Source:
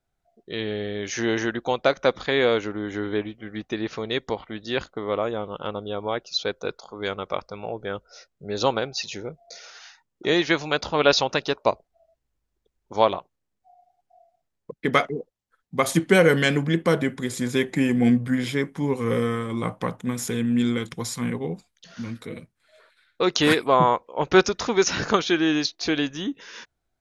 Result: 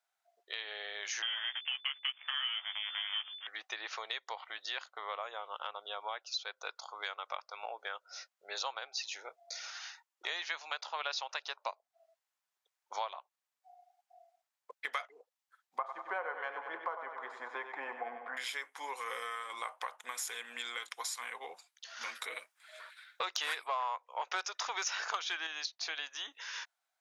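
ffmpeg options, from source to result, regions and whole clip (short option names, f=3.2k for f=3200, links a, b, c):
-filter_complex "[0:a]asettb=1/sr,asplit=3[a][b][c];[a]atrim=end=1.224[d];[b]atrim=start=1.22:end=3.47,asetpts=PTS-STARTPTS,afade=t=in:d=0.004:c=qsin,afade=t=out:st=2.246:d=0.004:c=qsin,acrusher=bits=5:dc=4:mix=0:aa=0.000001,asplit=2[e][f];[f]adelay=14,volume=-7.5dB[g];[e][g]amix=inputs=2:normalize=0,atrim=end_sample=99225,lowpass=f=3k:t=q:w=0.5098,lowpass=f=3k:t=q:w=0.6013,lowpass=f=3k:t=q:w=0.9,lowpass=f=3k:t=q:w=2.563,afreqshift=-3500[h];[c]atrim=start=3.466[i];[d][h]acrossfade=d=0.004:c1=hsin:c2=qsin[j];[j][i]acrossfade=d=0.004:c1=qsin:c2=hsin,asettb=1/sr,asplit=3[k][l][m];[k]atrim=end=15.784[n];[l]atrim=start=15.78:end=18.37,asetpts=PTS-STARTPTS,afade=t=in:d=0.004:c=qsin,afade=t=out:st=2.586:d=0.004:c=qsin,lowpass=f=1k:t=q:w=2.2,aecho=1:1:96|192|288|384|480|576:0.316|0.161|0.0823|0.0419|0.0214|0.0109,atrim=end_sample=114219[o];[m]atrim=start=18.366[p];[n][o]acrossfade=d=0.004:c1=hsin:c2=qsin[q];[q][p]acrossfade=d=0.004:c1=qsin:c2=hsin,asettb=1/sr,asplit=3[r][s][t];[r]atrim=end=22.014[u];[s]atrim=start=22.01:end=25.47,asetpts=PTS-STARTPTS,afade=t=in:d=0.004:c=qsin,afade=t=out:st=3.456:d=0.004:c=qsin,bandreject=f=4.2k:w=16,acontrast=88[v];[t]atrim=start=25.466[w];[u][v]acrossfade=d=0.004:c1=hsin:c2=qsin[x];[x][w]acrossfade=d=0.004:c1=qsin:c2=hsin,highpass=f=770:w=0.5412,highpass=f=770:w=1.3066,acompressor=threshold=-37dB:ratio=4"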